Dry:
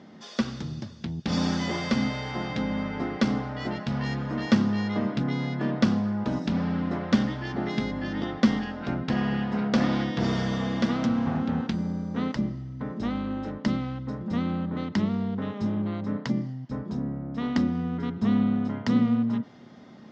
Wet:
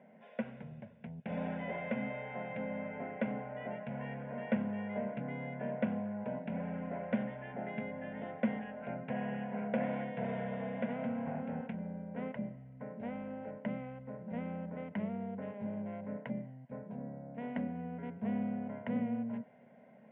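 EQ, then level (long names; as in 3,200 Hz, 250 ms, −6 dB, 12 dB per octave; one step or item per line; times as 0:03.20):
high-frequency loss of the air 200 metres
loudspeaker in its box 290–2,200 Hz, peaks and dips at 400 Hz −4 dB, 840 Hz −10 dB, 1,300 Hz −4 dB, 1,800 Hz −10 dB
phaser with its sweep stopped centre 1,200 Hz, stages 6
+1.0 dB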